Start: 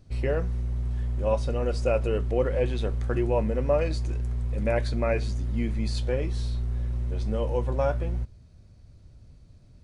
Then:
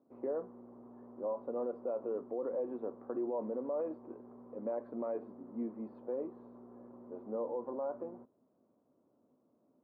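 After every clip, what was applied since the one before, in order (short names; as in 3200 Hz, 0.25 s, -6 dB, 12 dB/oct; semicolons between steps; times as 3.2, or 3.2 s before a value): Chebyshev band-pass 250–1100 Hz, order 3; limiter -24.5 dBFS, peak gain reduction 10.5 dB; gain -4.5 dB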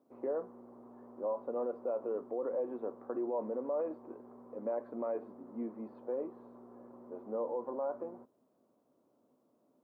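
low shelf 340 Hz -7 dB; gain +3.5 dB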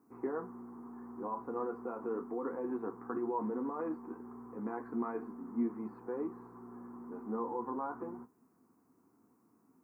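fixed phaser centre 1400 Hz, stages 4; flange 0.32 Hz, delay 9.6 ms, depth 5.1 ms, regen -48%; gain +12.5 dB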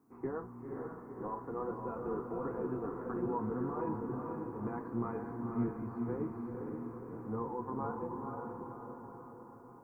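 octaver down 1 oct, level -5 dB; on a send: diffused feedback echo 0.5 s, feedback 57%, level -3 dB; on the sum: gain -2 dB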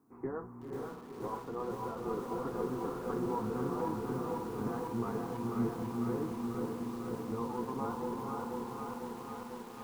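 lo-fi delay 0.495 s, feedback 80%, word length 9-bit, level -4.5 dB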